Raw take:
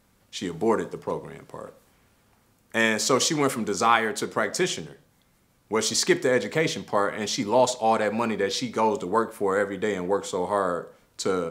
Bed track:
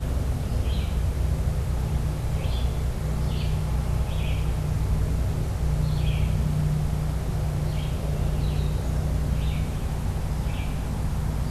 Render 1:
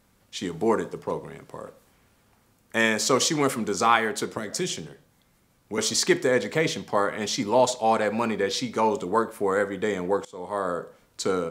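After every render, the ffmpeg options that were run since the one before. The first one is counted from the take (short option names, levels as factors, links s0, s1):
-filter_complex "[0:a]asettb=1/sr,asplit=3[s0][s1][s2];[s0]atrim=end=4.374[s3];[s1]atrim=start=4.37:end=5.78,asetpts=PTS-STARTPTS,afade=t=in:d=0.004:c=qsin,afade=t=out:st=1.406:d=0.004:c=qsin,acrossover=split=350|3000[s4][s5][s6];[s5]acompressor=threshold=0.00891:ratio=2.5:attack=3.2:release=140:knee=2.83:detection=peak[s7];[s4][s7][s6]amix=inputs=3:normalize=0[s8];[s2]atrim=start=5.776[s9];[s3][s8]acrossfade=d=0.004:c1=hsin:c2=qsin[s10];[s10][s9]acrossfade=d=0.004:c1=qsin:c2=hsin,asplit=2[s11][s12];[s11]atrim=end=10.25,asetpts=PTS-STARTPTS,afade=t=out:st=10.246:d=0.004:c=hsin:silence=0.0794328[s13];[s12]atrim=start=10.25,asetpts=PTS-STARTPTS,afade=t=in:d=0.55:silence=0.0794328[s14];[s13][s14]concat=n=2:v=0:a=1"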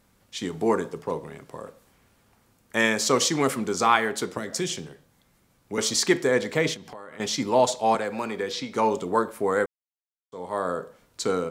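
-filter_complex "[0:a]asettb=1/sr,asplit=3[s0][s1][s2];[s0]atrim=end=6.744[s3];[s1]atrim=start=6.74:end=7.2,asetpts=PTS-STARTPTS,afade=t=in:d=0.004:c=qsin,afade=t=out:st=0.456:d=0.004:c=qsin,acompressor=threshold=0.0112:ratio=5:attack=3.2:release=140:knee=1:detection=peak[s4];[s2]atrim=start=7.196[s5];[s3][s4]acrossfade=d=0.004:c1=hsin:c2=qsin[s6];[s6][s5]acrossfade=d=0.004:c1=qsin:c2=hsin,asettb=1/sr,asplit=3[s7][s8][s9];[s7]atrim=end=7.954[s10];[s8]atrim=start=7.95:end=8.74,asetpts=PTS-STARTPTS,afade=t=in:d=0.004:c=qsin,afade=t=out:st=0.786:d=0.004:c=qsin,acrossover=split=300|5400[s11][s12][s13];[s11]acompressor=threshold=0.0126:ratio=4[s14];[s12]acompressor=threshold=0.0447:ratio=4[s15];[s13]acompressor=threshold=0.00447:ratio=4[s16];[s14][s15][s16]amix=inputs=3:normalize=0[s17];[s9]atrim=start=8.736[s18];[s10][s17]acrossfade=d=0.004:c1=hsin:c2=qsin[s19];[s19][s18]acrossfade=d=0.004:c1=qsin:c2=hsin,asplit=3[s20][s21][s22];[s20]atrim=end=9.66,asetpts=PTS-STARTPTS,afade=t=out:st=9.656:d=0.004:c=hsin[s23];[s21]atrim=start=9.66:end=10.32,asetpts=PTS-STARTPTS,volume=0[s24];[s22]atrim=start=10.32,asetpts=PTS-STARTPTS,afade=t=in:d=0.004:c=hsin[s25];[s23][s24][s25]concat=n=3:v=0:a=1"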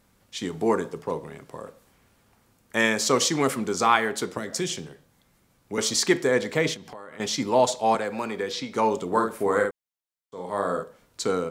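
-filter_complex "[0:a]asettb=1/sr,asplit=3[s0][s1][s2];[s0]atrim=end=9.074[s3];[s1]atrim=start=9.07:end=10.83,asetpts=PTS-STARTPTS,afade=t=in:d=0.004:c=qsin,afade=t=out:st=1.756:d=0.004:c=qsin,asplit=2[s4][s5];[s5]adelay=50,volume=0.596[s6];[s4][s6]amix=inputs=2:normalize=0,atrim=end_sample=77616[s7];[s2]atrim=start=10.826[s8];[s3][s7]acrossfade=d=0.004:c1=hsin:c2=qsin[s9];[s9][s8]acrossfade=d=0.004:c1=qsin:c2=hsin"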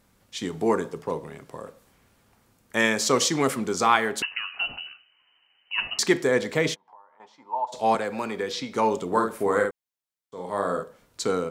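-filter_complex "[0:a]asettb=1/sr,asplit=3[s0][s1][s2];[s0]atrim=end=4.224[s3];[s1]atrim=start=4.22:end=5.99,asetpts=PTS-STARTPTS,afade=t=in:d=0.004:c=qsin,afade=t=out:st=1.766:d=0.004:c=qsin,lowpass=f=2600:t=q:w=0.5098,lowpass=f=2600:t=q:w=0.6013,lowpass=f=2600:t=q:w=0.9,lowpass=f=2600:t=q:w=2.563,afreqshift=-3100[s4];[s2]atrim=start=5.986[s5];[s3][s4]acrossfade=d=0.004:c1=hsin:c2=qsin[s6];[s6][s5]acrossfade=d=0.004:c1=qsin:c2=hsin,asplit=3[s7][s8][s9];[s7]afade=t=out:st=6.74:d=0.02[s10];[s8]bandpass=f=920:t=q:w=8,afade=t=in:st=6.74:d=0.02,afade=t=out:st=7.72:d=0.02[s11];[s9]afade=t=in:st=7.72:d=0.02[s12];[s10][s11][s12]amix=inputs=3:normalize=0"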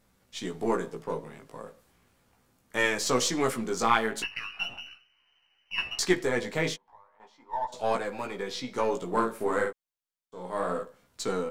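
-af "aeval=exprs='if(lt(val(0),0),0.708*val(0),val(0))':c=same,flanger=delay=15.5:depth=2.6:speed=0.36"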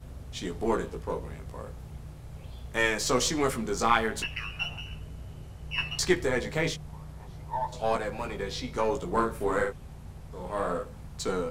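-filter_complex "[1:a]volume=0.141[s0];[0:a][s0]amix=inputs=2:normalize=0"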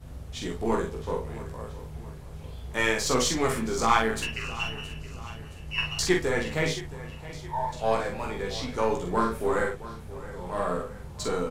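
-filter_complex "[0:a]asplit=2[s0][s1];[s1]adelay=45,volume=0.668[s2];[s0][s2]amix=inputs=2:normalize=0,aecho=1:1:670|1340|2010|2680:0.15|0.0718|0.0345|0.0165"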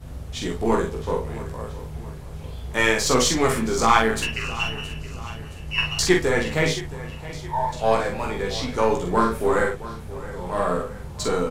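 -af "volume=1.88,alimiter=limit=0.794:level=0:latency=1"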